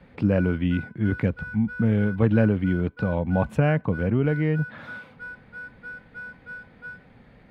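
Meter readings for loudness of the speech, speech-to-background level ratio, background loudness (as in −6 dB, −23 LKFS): −24.0 LKFS, 15.5 dB, −39.5 LKFS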